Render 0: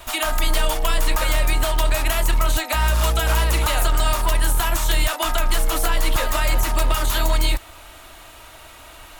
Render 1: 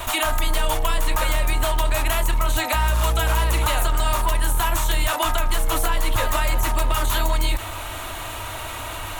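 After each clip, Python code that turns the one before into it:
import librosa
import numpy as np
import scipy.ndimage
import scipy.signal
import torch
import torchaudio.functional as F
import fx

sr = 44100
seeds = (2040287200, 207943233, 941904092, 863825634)

y = fx.graphic_eq_31(x, sr, hz=(100, 1000, 5000), db=(11, 4, -6))
y = fx.env_flatten(y, sr, amount_pct=50)
y = F.gain(torch.from_numpy(y), -3.0).numpy()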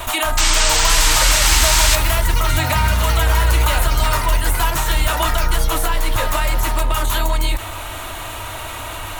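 y = fx.spec_paint(x, sr, seeds[0], shape='noise', start_s=0.37, length_s=1.59, low_hz=790.0, high_hz=8700.0, level_db=-20.0)
y = fx.echo_pitch(y, sr, ms=644, semitones=7, count=3, db_per_echo=-6.0)
y = F.gain(torch.from_numpy(y), 2.5).numpy()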